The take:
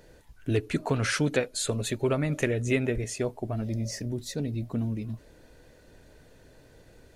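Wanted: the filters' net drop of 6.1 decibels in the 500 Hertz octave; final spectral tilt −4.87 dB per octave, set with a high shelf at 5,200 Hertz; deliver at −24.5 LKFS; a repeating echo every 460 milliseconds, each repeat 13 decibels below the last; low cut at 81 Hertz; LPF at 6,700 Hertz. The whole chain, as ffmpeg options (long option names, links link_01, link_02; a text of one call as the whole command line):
ffmpeg -i in.wav -af "highpass=81,lowpass=6700,equalizer=frequency=500:width_type=o:gain=-8,highshelf=frequency=5200:gain=3.5,aecho=1:1:460|920|1380:0.224|0.0493|0.0108,volume=7dB" out.wav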